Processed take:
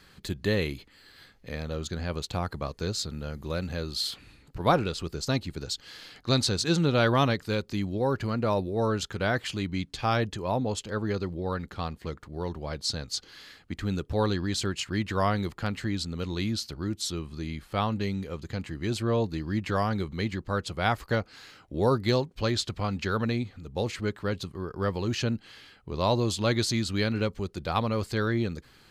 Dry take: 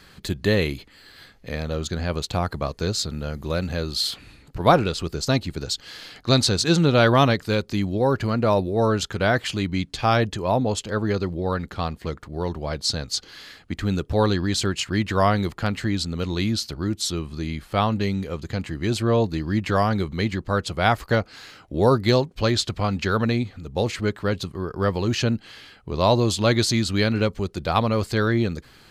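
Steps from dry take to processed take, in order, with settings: peaking EQ 660 Hz -3 dB 0.22 oct; trim -6 dB

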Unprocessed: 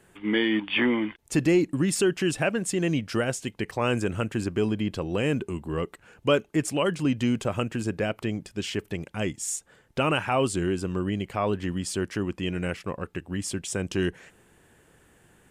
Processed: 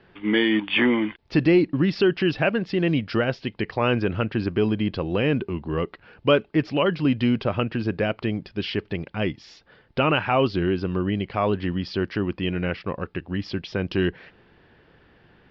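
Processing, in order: steep low-pass 5 kHz 72 dB/octave; trim +3.5 dB

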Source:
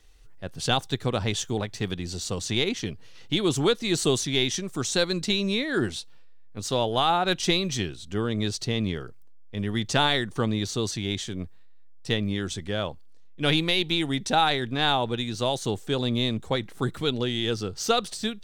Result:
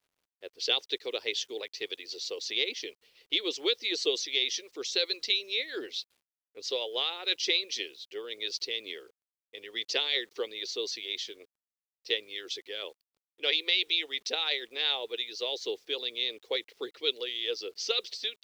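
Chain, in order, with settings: elliptic band-pass 440–5100 Hz, stop band 40 dB; harmonic-percussive split harmonic -11 dB; high-order bell 1 kHz -15.5 dB; bit crusher 11-bit; tape noise reduction on one side only decoder only; trim +2 dB

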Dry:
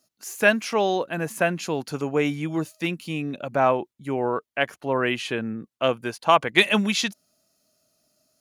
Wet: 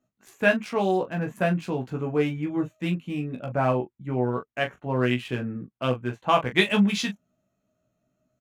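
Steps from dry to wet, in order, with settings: local Wiener filter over 9 samples; tone controls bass +9 dB, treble -1 dB; early reflections 16 ms -3 dB, 40 ms -9 dB; trim -5.5 dB

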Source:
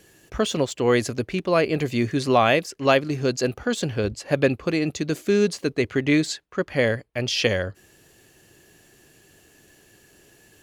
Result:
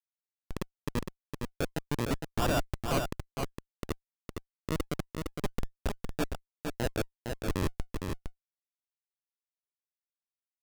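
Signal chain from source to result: time reversed locally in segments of 130 ms; high-pass 320 Hz 6 dB/octave; resonant high shelf 2.3 kHz -11 dB, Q 3; in parallel at -3 dB: compression 4:1, threshold -33 dBFS, peak gain reduction 18 dB; on the sum: slow attack 172 ms; low-pass sweep 960 Hz -> 2.3 kHz, 5.23–6.46 s; bit crusher 8-bit; Schmitt trigger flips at -17 dBFS; decimation with a swept rate 41×, swing 100% 0.29 Hz; on a send: delay 460 ms -5 dB

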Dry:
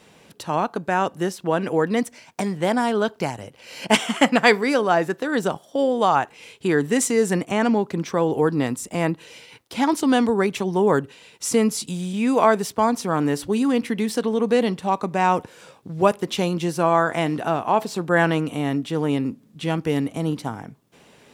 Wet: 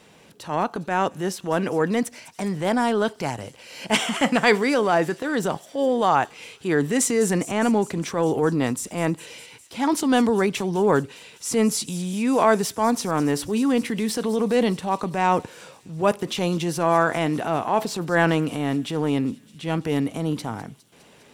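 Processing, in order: transient shaper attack -6 dB, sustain +3 dB; feedback echo behind a high-pass 204 ms, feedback 74%, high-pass 5 kHz, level -13 dB

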